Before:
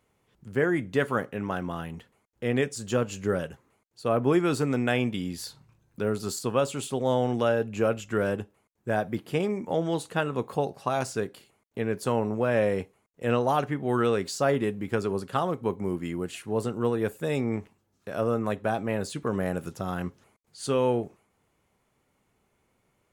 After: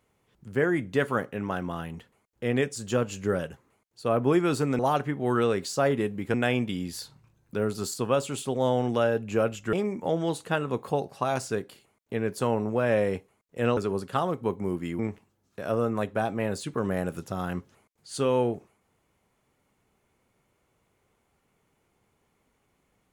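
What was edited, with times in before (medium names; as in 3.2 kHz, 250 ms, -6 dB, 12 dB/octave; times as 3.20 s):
8.18–9.38 s: delete
13.42–14.97 s: move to 4.79 s
16.19–17.48 s: delete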